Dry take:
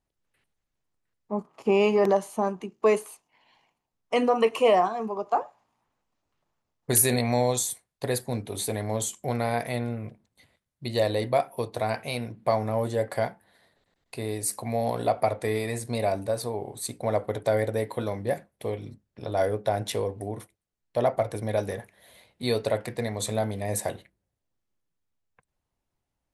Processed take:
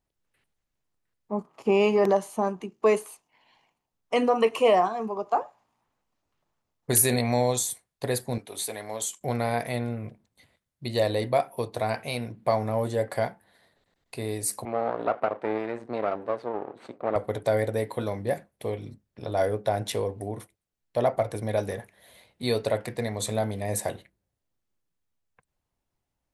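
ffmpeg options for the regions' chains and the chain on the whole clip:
-filter_complex "[0:a]asettb=1/sr,asplit=3[s0][s1][s2];[s0]atrim=end=8.384[s3];[s1]atrim=start=8.38:end=9.21,asetpts=PTS-STARTPTS,afade=t=in:d=0.004:c=qsin,afade=t=out:st=0.826:d=0.004:c=qsin,highpass=f=770:p=1,agate=range=0.0224:threshold=0.00282:ratio=3:release=100:detection=peak[s4];[s2]atrim=start=9.206[s5];[s3][s4]acrossfade=d=0.004:c1=hsin:c2=qsin[s6];[s6][s5]acrossfade=d=0.004:c1=qsin:c2=hsin,asettb=1/sr,asplit=3[s7][s8][s9];[s7]atrim=end=14.654[s10];[s8]atrim=start=14.65:end=17.16,asetpts=PTS-STARTPTS,afade=t=in:d=0.004:c=qsin,afade=t=out:st=2.506:d=0.004:c=qsin,lowshelf=f=450:g=8.5,aeval=exprs='max(val(0),0)':c=same,highpass=330,lowpass=2000[s11];[s9]atrim=start=17.156[s12];[s10][s11]acrossfade=d=0.004:c1=hsin:c2=qsin[s13];[s13][s12]acrossfade=d=0.004:c1=qsin:c2=hsin"

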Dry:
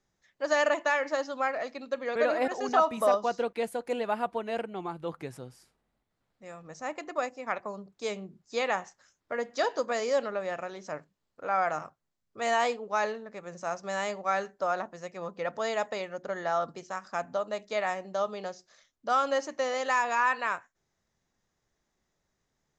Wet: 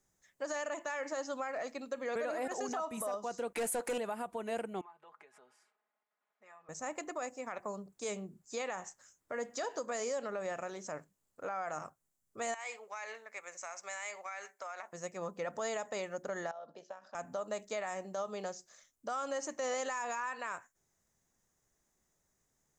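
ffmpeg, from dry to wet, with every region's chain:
-filter_complex "[0:a]asettb=1/sr,asplit=3[s0][s1][s2];[s0]atrim=end=3.554[s3];[s1]atrim=start=3.55:end=3.98,asetpts=PTS-STARTPTS,afade=t=in:d=0.004:c=qsin,afade=t=out:st=0.426:d=0.004:c=qsin,highshelf=f=4000:g=5,asplit=2[s4][s5];[s5]highpass=f=720:p=1,volume=10,asoftclip=type=tanh:threshold=0.112[s6];[s4][s6]amix=inputs=2:normalize=0,lowpass=f=2700:p=1,volume=0.501[s7];[s2]atrim=start=3.976[s8];[s3][s7]acrossfade=d=0.004:c1=hsin:c2=qsin[s9];[s9][s8]acrossfade=d=0.004:c1=qsin:c2=hsin,asettb=1/sr,asplit=3[s10][s11][s12];[s10]atrim=end=4.814[s13];[s11]atrim=start=4.81:end=6.69,asetpts=PTS-STARTPTS,afade=t=in:d=0.004:c=qsin,afade=t=out:st=1.876:d=0.004:c=qsin,aecho=1:1:4.8:0.73,atrim=end_sample=82908,acompressor=threshold=0.00562:ratio=10:attack=3.2:release=140:knee=1:detection=peak,highpass=770,lowpass=2400[s14];[s12]atrim=start=6.686[s15];[s13][s14]acrossfade=d=0.004:c1=hsin:c2=qsin[s16];[s16][s15]acrossfade=d=0.004:c1=qsin:c2=hsin,asettb=1/sr,asplit=3[s17][s18][s19];[s17]atrim=end=12.544[s20];[s18]atrim=start=12.54:end=14.93,asetpts=PTS-STARTPTS,afade=t=in:d=0.004:c=qsin,afade=t=out:st=2.386:d=0.004:c=qsin,highpass=810,acompressor=threshold=0.0141:ratio=16:attack=3.2:release=140:knee=1:detection=peak,equalizer=f=2200:t=o:w=0.36:g=12[s21];[s19]atrim=start=14.926[s22];[s20][s21]acrossfade=d=0.004:c1=hsin:c2=qsin[s23];[s23][s22]acrossfade=d=0.004:c1=qsin:c2=hsin,asettb=1/sr,asplit=3[s24][s25][s26];[s24]atrim=end=16.514[s27];[s25]atrim=start=16.51:end=17.15,asetpts=PTS-STARTPTS,afade=t=in:d=0.004:c=qsin,afade=t=out:st=0.636:d=0.004:c=qsin,acompressor=threshold=0.0126:ratio=12:attack=3.2:release=140:knee=1:detection=peak,tremolo=f=65:d=0.4,highpass=310,equalizer=f=350:t=q:w=4:g=-6,equalizer=f=590:t=q:w=4:g=7,equalizer=f=1200:t=q:w=4:g=-8,equalizer=f=2100:t=q:w=4:g=-9,lowpass=f=4300:w=0.5412,lowpass=f=4300:w=1.3066[s28];[s26]atrim=start=17.146[s29];[s27][s28]acrossfade=d=0.004:c1=hsin:c2=qsin[s30];[s30][s29]acrossfade=d=0.004:c1=qsin:c2=hsin,acompressor=threshold=0.0398:ratio=6,highshelf=f=6000:t=q:w=1.5:g=10.5,alimiter=level_in=1.33:limit=0.0631:level=0:latency=1:release=50,volume=0.75,volume=0.794"

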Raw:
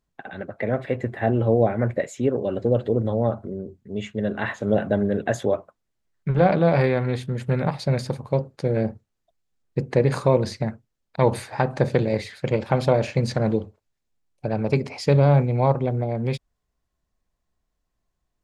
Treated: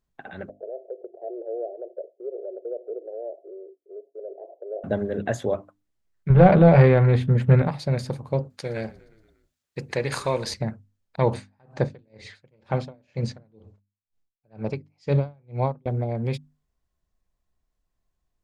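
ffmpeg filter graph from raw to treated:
-filter_complex "[0:a]asettb=1/sr,asplit=3[s0][s1][s2];[s0]atrim=end=0.494[s3];[s1]atrim=start=0.49:end=4.84,asetpts=PTS-STARTPTS,afade=t=in:d=0.004:c=qsin,afade=t=out:st=4.346:d=0.004:c=qsin,asuperpass=centerf=500:order=12:qfactor=1.4,acompressor=threshold=0.0126:ratio=1.5:attack=3.2:release=140:knee=1:detection=peak[s4];[s2]atrim=start=4.836[s5];[s3][s4]acrossfade=d=0.004:c1=hsin:c2=qsin[s6];[s6][s5]acrossfade=d=0.004:c1=qsin:c2=hsin,asettb=1/sr,asplit=3[s7][s8][s9];[s7]atrim=end=6.304[s10];[s8]atrim=start=6.3:end=7.62,asetpts=PTS-STARTPTS,afade=t=in:d=0.004:c=qsin,afade=t=out:st=1.316:d=0.004:c=qsin,acontrast=85,bass=f=250:g=3,treble=f=4000:g=-13,bandreject=f=290:w=6.9[s11];[s9]atrim=start=7.616[s12];[s10][s11]acrossfade=d=0.004:c1=hsin:c2=qsin[s13];[s13][s12]acrossfade=d=0.004:c1=qsin:c2=hsin,asettb=1/sr,asplit=3[s14][s15][s16];[s14]atrim=end=8.504[s17];[s15]atrim=start=8.5:end=10.54,asetpts=PTS-STARTPTS,afade=t=in:d=0.004:c=qsin,afade=t=out:st=2.036:d=0.004:c=qsin,highpass=57,tiltshelf=f=880:g=-8.5,asplit=6[s18][s19][s20][s21][s22][s23];[s19]adelay=118,afreqshift=-38,volume=0.0794[s24];[s20]adelay=236,afreqshift=-76,volume=0.0507[s25];[s21]adelay=354,afreqshift=-114,volume=0.0324[s26];[s22]adelay=472,afreqshift=-152,volume=0.0209[s27];[s23]adelay=590,afreqshift=-190,volume=0.0133[s28];[s18][s24][s25][s26][s27][s28]amix=inputs=6:normalize=0,atrim=end_sample=89964[s29];[s16]atrim=start=10.536[s30];[s17][s29]acrossfade=d=0.004:c1=hsin:c2=qsin[s31];[s31][s30]acrossfade=d=0.004:c1=qsin:c2=hsin,asettb=1/sr,asplit=3[s32][s33][s34];[s32]atrim=end=11.344[s35];[s33]atrim=start=11.34:end=15.86,asetpts=PTS-STARTPTS,afade=t=in:d=0.004:c=qsin,afade=t=out:st=4.516:d=0.004:c=qsin,lowpass=f=7800:w=0.5412,lowpass=f=7800:w=1.3066,aeval=exprs='val(0)*pow(10,-39*(0.5-0.5*cos(2*PI*2.1*n/s))/20)':c=same[s36];[s34]atrim=start=15.856[s37];[s35][s36]acrossfade=d=0.004:c1=hsin:c2=qsin[s38];[s38][s37]acrossfade=d=0.004:c1=qsin:c2=hsin,lowshelf=f=110:g=5,bandreject=f=50:t=h:w=6,bandreject=f=100:t=h:w=6,bandreject=f=150:t=h:w=6,bandreject=f=200:t=h:w=6,bandreject=f=250:t=h:w=6,bandreject=f=300:t=h:w=6,volume=0.708"

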